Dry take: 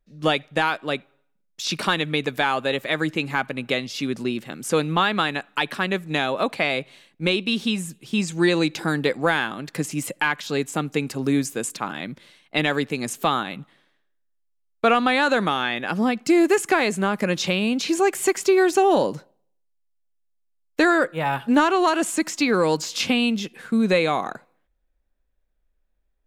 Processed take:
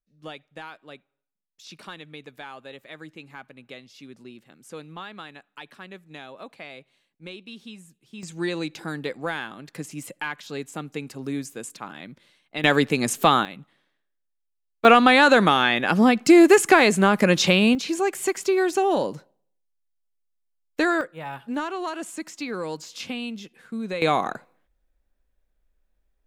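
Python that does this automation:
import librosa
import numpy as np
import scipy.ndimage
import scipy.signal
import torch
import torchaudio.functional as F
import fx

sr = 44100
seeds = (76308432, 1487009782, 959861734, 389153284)

y = fx.gain(x, sr, db=fx.steps((0.0, -18.0), (8.23, -8.5), (12.64, 4.0), (13.45, -6.5), (14.85, 4.5), (17.75, -4.0), (21.01, -11.0), (24.02, 1.5)))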